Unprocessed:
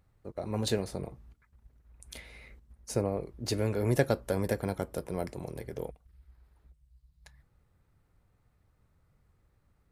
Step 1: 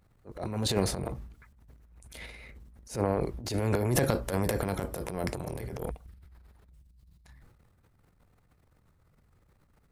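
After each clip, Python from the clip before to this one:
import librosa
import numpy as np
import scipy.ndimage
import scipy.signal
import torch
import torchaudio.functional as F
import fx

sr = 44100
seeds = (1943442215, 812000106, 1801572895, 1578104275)

y = fx.transient(x, sr, attack_db=-11, sustain_db=11)
y = F.gain(torch.from_numpy(y), 2.0).numpy()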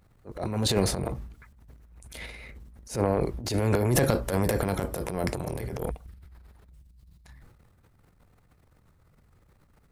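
y = 10.0 ** (-13.5 / 20.0) * np.tanh(x / 10.0 ** (-13.5 / 20.0))
y = F.gain(torch.from_numpy(y), 4.0).numpy()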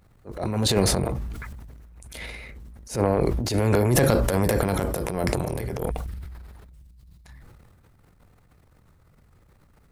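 y = fx.sustainer(x, sr, db_per_s=27.0)
y = F.gain(torch.from_numpy(y), 3.0).numpy()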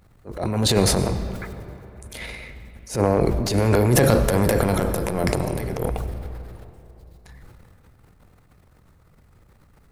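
y = fx.rev_freeverb(x, sr, rt60_s=3.2, hf_ratio=0.55, predelay_ms=55, drr_db=11.0)
y = F.gain(torch.from_numpy(y), 2.5).numpy()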